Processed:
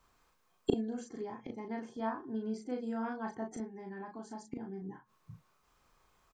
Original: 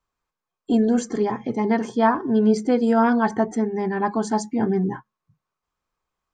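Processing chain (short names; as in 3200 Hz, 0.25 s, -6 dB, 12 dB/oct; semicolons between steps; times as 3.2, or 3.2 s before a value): 3.77–4.82 compressor 5:1, threshold -22 dBFS, peak gain reduction 5.5 dB; flipped gate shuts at -25 dBFS, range -31 dB; doubler 36 ms -3.5 dB; gain +10.5 dB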